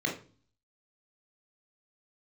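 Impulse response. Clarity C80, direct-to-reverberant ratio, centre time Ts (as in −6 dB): 14.0 dB, −0.5 dB, 23 ms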